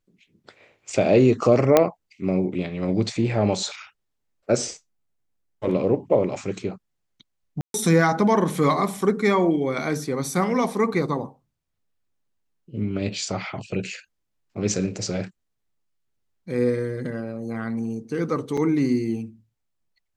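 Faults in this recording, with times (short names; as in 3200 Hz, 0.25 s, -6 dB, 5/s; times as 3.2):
1.77 pop -2 dBFS
7.61–7.74 gap 0.132 s
18.57 gap 4.4 ms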